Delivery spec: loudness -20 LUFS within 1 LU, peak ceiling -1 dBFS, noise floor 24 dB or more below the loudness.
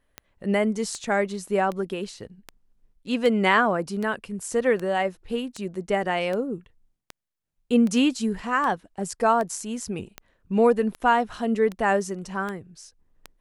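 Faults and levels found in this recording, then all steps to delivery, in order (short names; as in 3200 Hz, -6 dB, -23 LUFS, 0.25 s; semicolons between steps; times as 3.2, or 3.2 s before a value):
clicks 18; loudness -24.5 LUFS; peak -7.0 dBFS; loudness target -20.0 LUFS
-> de-click; gain +4.5 dB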